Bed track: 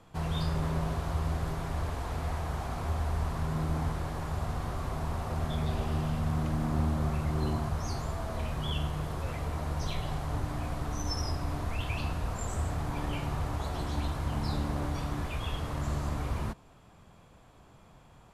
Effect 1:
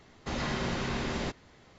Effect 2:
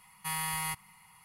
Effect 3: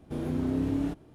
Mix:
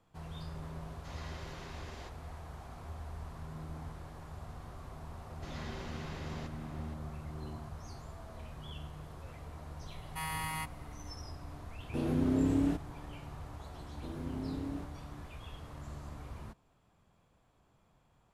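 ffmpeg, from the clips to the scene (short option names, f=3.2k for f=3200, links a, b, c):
-filter_complex "[1:a]asplit=2[a][b];[3:a]asplit=2[c][d];[0:a]volume=-13dB[e];[a]bass=f=250:g=-14,treble=f=4k:g=2[f];[b]asplit=2[g][h];[h]adelay=542.3,volume=-7dB,highshelf=f=4k:g=-12.2[i];[g][i]amix=inputs=2:normalize=0[j];[2:a]highshelf=f=4.5k:g=-9.5[k];[c]aresample=32000,aresample=44100[l];[f]atrim=end=1.78,asetpts=PTS-STARTPTS,volume=-15dB,afade=t=in:d=0.004:c=hsin,afade=t=out:st=1.776:d=0.004:c=hsin,adelay=780[m];[j]atrim=end=1.78,asetpts=PTS-STARTPTS,volume=-13dB,afade=t=in:d=0.004:c=hsin,afade=t=out:st=1.776:d=0.004:c=hsin,adelay=5160[n];[k]atrim=end=1.24,asetpts=PTS-STARTPTS,volume=-1.5dB,afade=t=in:d=0.004:c=hsin,afade=t=out:st=1.236:d=0.004:c=hsin,adelay=9910[o];[l]atrim=end=1.14,asetpts=PTS-STARTPTS,volume=-0.5dB,afade=t=in:d=0.004:c=hsin,afade=t=out:st=1.136:d=0.004:c=hsin,adelay=11830[p];[d]atrim=end=1.14,asetpts=PTS-STARTPTS,volume=-11dB,afade=t=in:d=0.004:c=hsin,afade=t=out:st=1.136:d=0.004:c=hsin,adelay=13910[q];[e][m][n][o][p][q]amix=inputs=6:normalize=0"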